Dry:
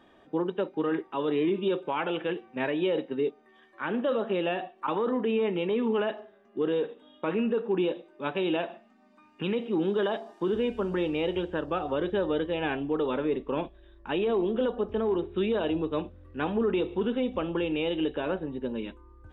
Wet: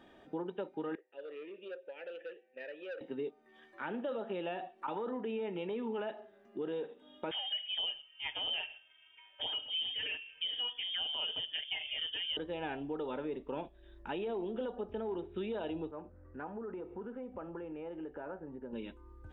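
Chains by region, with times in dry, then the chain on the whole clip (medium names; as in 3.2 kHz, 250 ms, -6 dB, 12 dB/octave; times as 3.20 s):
0.95–3.01 s: vowel filter e + bass shelf 370 Hz -8 dB + transformer saturation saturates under 1.2 kHz
7.31–12.37 s: comb 6.1 ms, depth 56% + frequency inversion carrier 3.4 kHz
15.91–18.73 s: low-pass 1.5 kHz 24 dB/octave + tilt shelf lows -5 dB, about 780 Hz + compression 1.5:1, threshold -45 dBFS
whole clip: band-stop 1.1 kHz, Q 6.7; dynamic bell 870 Hz, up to +5 dB, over -42 dBFS, Q 1.4; compression 2:1, threshold -43 dBFS; trim -1 dB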